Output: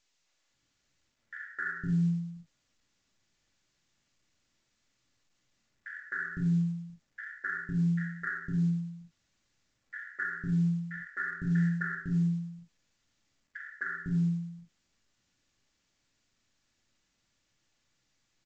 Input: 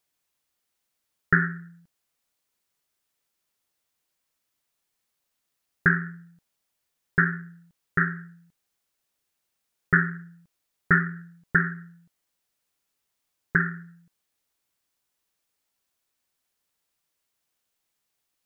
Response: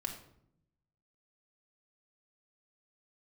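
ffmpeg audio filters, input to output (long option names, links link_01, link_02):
-filter_complex "[0:a]firequalizer=gain_entry='entry(130,0);entry(860,-15);entry(1800,-4);entry(3200,-8)':delay=0.05:min_phase=1,areverse,acompressor=threshold=-33dB:ratio=8,areverse,acrossover=split=440|2100[link_01][link_02][link_03];[link_02]adelay=260[link_04];[link_01]adelay=510[link_05];[link_05][link_04][link_03]amix=inputs=3:normalize=0[link_06];[1:a]atrim=start_sample=2205,atrim=end_sample=4410[link_07];[link_06][link_07]afir=irnorm=-1:irlink=0,volume=7.5dB" -ar 16000 -c:a pcm_mulaw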